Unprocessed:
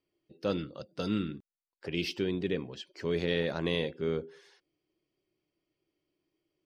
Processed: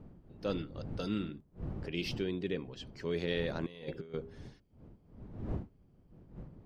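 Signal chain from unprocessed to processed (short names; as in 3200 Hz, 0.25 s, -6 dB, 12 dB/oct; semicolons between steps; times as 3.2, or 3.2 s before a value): wind noise 190 Hz -42 dBFS; 3.66–4.14 negative-ratio compressor -38 dBFS, ratio -0.5; gain -4 dB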